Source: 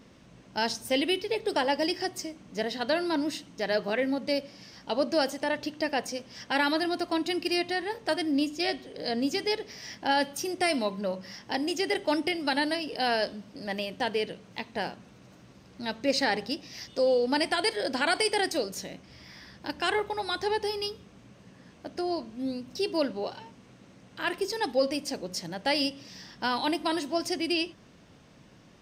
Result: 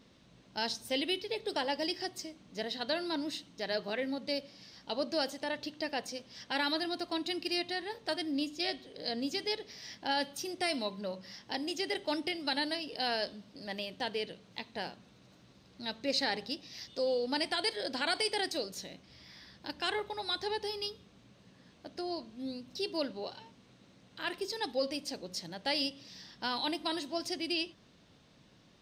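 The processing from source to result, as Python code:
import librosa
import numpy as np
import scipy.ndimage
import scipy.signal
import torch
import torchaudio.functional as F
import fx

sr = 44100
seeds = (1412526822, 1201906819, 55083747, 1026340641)

y = fx.peak_eq(x, sr, hz=3900.0, db=8.0, octaves=0.63)
y = y * 10.0 ** (-7.5 / 20.0)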